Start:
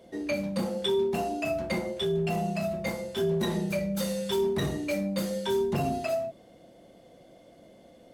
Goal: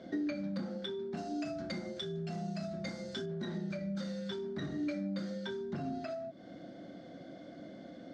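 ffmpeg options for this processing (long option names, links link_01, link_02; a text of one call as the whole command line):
ffmpeg -i in.wav -filter_complex "[0:a]asettb=1/sr,asplit=3[link_01][link_02][link_03];[link_01]atrim=end=1.174[link_04];[link_02]atrim=start=1.17:end=3.26,asetpts=PTS-STARTPTS,afade=type=in:duration=0.004:curve=qsin,afade=type=out:start_time=2.086:duration=0.004:curve=qsin,bass=frequency=250:gain=2,treble=frequency=4000:gain=12[link_05];[link_03]atrim=start=3.256[link_06];[link_04][link_05]acrossfade=duration=0.004:curve1=hsin:curve2=qsin[link_07];[link_07][link_06]acrossfade=duration=0.004:curve1=qsin:curve2=hsin,acompressor=threshold=-41dB:ratio=10,highpass=100,equalizer=frequency=180:width_type=q:width=4:gain=3,equalizer=frequency=280:width_type=q:width=4:gain=8,equalizer=frequency=460:width_type=q:width=4:gain=-7,equalizer=frequency=950:width_type=q:width=4:gain=-9,equalizer=frequency=1500:width_type=q:width=4:gain=8,equalizer=frequency=2700:width_type=q:width=4:gain=-10,lowpass=frequency=5300:width=0.5412,lowpass=frequency=5300:width=1.3066,volume=4.5dB" out.wav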